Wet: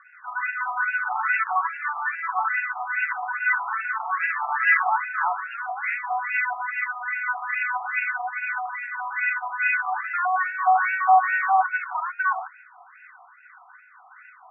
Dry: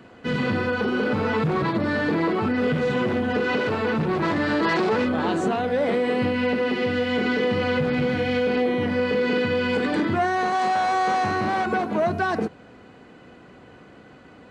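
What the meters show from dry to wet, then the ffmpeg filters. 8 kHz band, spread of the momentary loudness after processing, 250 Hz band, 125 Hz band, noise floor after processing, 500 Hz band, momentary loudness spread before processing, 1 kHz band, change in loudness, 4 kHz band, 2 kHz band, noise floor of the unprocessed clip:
n/a, 9 LU, under -40 dB, under -40 dB, -51 dBFS, -19.5 dB, 2 LU, +2.5 dB, -1.0 dB, under -20 dB, +5.0 dB, -48 dBFS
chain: -filter_complex "[0:a]acrossover=split=1100[a][b];[a]aeval=exprs='val(0)*(1-0.7/2+0.7/2*cos(2*PI*1.8*n/s))':c=same[c];[b]aeval=exprs='val(0)*(1-0.7/2-0.7/2*cos(2*PI*1.8*n/s))':c=same[d];[c][d]amix=inputs=2:normalize=0,acontrast=59,afftfilt=real='re*between(b*sr/1024,930*pow(2000/930,0.5+0.5*sin(2*PI*2.4*pts/sr))/1.41,930*pow(2000/930,0.5+0.5*sin(2*PI*2.4*pts/sr))*1.41)':imag='im*between(b*sr/1024,930*pow(2000/930,0.5+0.5*sin(2*PI*2.4*pts/sr))/1.41,930*pow(2000/930,0.5+0.5*sin(2*PI*2.4*pts/sr))*1.41)':win_size=1024:overlap=0.75,volume=4.5dB"

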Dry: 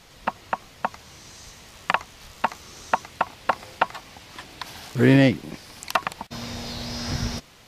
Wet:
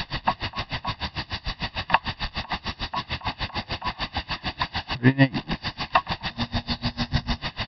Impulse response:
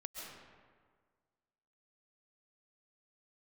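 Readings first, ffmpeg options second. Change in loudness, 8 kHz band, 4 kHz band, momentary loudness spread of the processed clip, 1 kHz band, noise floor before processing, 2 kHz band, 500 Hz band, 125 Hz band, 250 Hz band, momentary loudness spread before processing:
-1.5 dB, under -10 dB, +6.0 dB, 8 LU, 0.0 dB, -51 dBFS, +1.5 dB, -6.0 dB, +0.5 dB, -3.0 dB, 22 LU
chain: -af "aeval=exprs='val(0)+0.5*0.1*sgn(val(0))':c=same,aecho=1:1:1.1:0.63,aresample=11025,aresample=44100,aeval=exprs='val(0)*pow(10,-28*(0.5-0.5*cos(2*PI*6.7*n/s))/20)':c=same"

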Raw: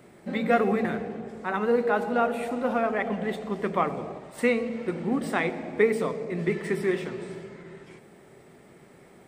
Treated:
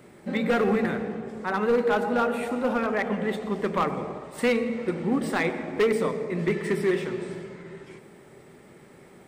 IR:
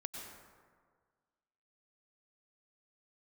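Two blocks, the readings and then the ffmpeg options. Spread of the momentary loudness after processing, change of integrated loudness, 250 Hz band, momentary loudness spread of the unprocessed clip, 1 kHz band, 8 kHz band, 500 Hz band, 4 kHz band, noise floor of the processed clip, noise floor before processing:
10 LU, +1.0 dB, +1.5 dB, 13 LU, -0.5 dB, +2.5 dB, +1.0 dB, +4.0 dB, -51 dBFS, -53 dBFS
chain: -filter_complex "[0:a]bandreject=f=690:w=12,asplit=2[a][b];[1:a]atrim=start_sample=2205[c];[b][c]afir=irnorm=-1:irlink=0,volume=-8dB[d];[a][d]amix=inputs=2:normalize=0,asoftclip=type=hard:threshold=-17dB"

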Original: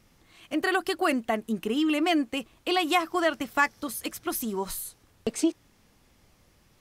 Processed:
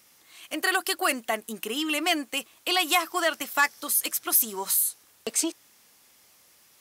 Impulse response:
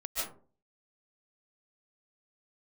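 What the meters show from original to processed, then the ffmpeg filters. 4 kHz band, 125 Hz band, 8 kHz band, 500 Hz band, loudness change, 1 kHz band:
+5.0 dB, n/a, +11.0 dB, -3.0 dB, +2.5 dB, 0.0 dB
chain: -af "highshelf=f=6.4k:g=12,asoftclip=type=tanh:threshold=-12dB,highpass=f=870:p=1,volume=3.5dB"

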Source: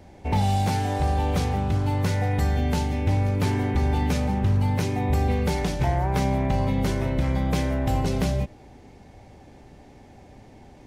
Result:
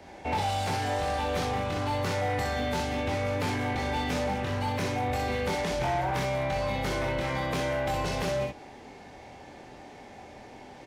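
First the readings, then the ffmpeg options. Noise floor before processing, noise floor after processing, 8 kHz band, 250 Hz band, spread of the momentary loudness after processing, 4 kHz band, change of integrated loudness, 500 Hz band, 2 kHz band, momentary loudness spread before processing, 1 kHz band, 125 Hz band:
-49 dBFS, -48 dBFS, -2.0 dB, -7.5 dB, 18 LU, +1.0 dB, -5.0 dB, 0.0 dB, +2.0 dB, 2 LU, -1.0 dB, -10.5 dB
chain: -filter_complex "[0:a]acrossover=split=180|1700|5300[a][b][c][d];[a]acompressor=threshold=-26dB:ratio=4[e];[b]acompressor=threshold=-28dB:ratio=4[f];[c]acompressor=threshold=-42dB:ratio=4[g];[d]acompressor=threshold=-45dB:ratio=4[h];[e][f][g][h]amix=inputs=4:normalize=0,aecho=1:1:24|63:0.668|0.631,asplit=2[i][j];[j]highpass=f=720:p=1,volume=18dB,asoftclip=type=tanh:threshold=-13dB[k];[i][k]amix=inputs=2:normalize=0,lowpass=f=4.5k:p=1,volume=-6dB,volume=-7dB"

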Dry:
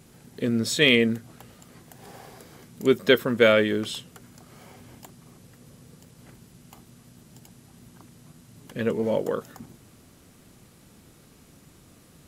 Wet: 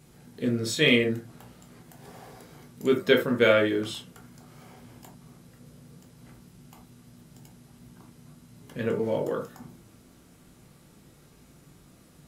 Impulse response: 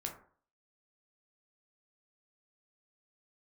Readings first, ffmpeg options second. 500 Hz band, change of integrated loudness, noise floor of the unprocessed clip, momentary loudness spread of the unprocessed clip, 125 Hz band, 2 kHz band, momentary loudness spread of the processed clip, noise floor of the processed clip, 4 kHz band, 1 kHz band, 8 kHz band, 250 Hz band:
-2.0 dB, -2.0 dB, -54 dBFS, 15 LU, -0.5 dB, -2.5 dB, 15 LU, -56 dBFS, -3.5 dB, -1.0 dB, -3.5 dB, -2.0 dB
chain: -filter_complex "[1:a]atrim=start_sample=2205,afade=t=out:st=0.14:d=0.01,atrim=end_sample=6615[a];[0:a][a]afir=irnorm=-1:irlink=0,volume=-1.5dB"

